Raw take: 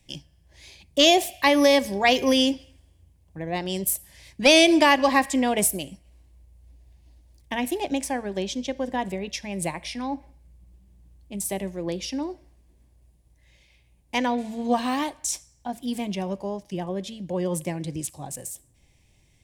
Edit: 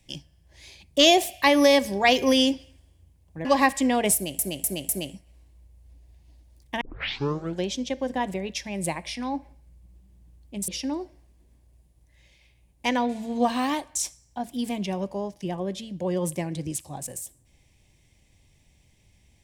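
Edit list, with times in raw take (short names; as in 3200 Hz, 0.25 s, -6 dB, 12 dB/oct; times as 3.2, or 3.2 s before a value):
3.45–4.98 cut
5.67–5.92 loop, 4 plays
7.59 tape start 0.83 s
11.46–11.97 cut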